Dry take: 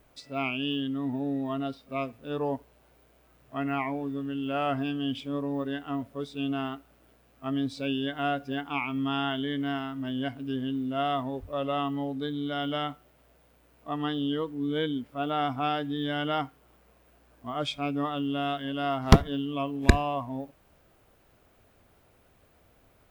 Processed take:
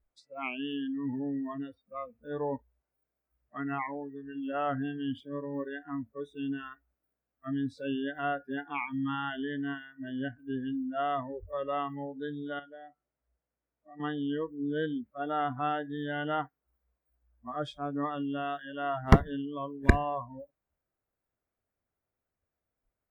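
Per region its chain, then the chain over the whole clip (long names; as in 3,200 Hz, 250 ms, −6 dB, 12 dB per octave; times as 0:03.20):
0:12.59–0:14.00: downward compressor 2 to 1, threshold −46 dBFS + high-frequency loss of the air 120 metres
whole clip: noise reduction from a noise print of the clip's start 25 dB; high shelf with overshoot 2,700 Hz −8.5 dB, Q 1.5; level −2.5 dB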